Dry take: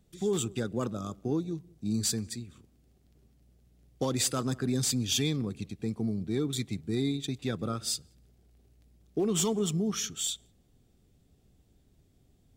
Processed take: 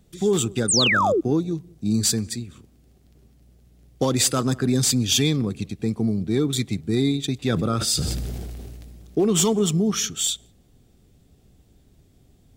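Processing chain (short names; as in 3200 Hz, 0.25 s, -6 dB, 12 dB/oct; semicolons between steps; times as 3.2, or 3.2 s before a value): 0.68–1.21 painted sound fall 300–9400 Hz -28 dBFS; 7.45–9.21 sustainer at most 21 dB/s; gain +8.5 dB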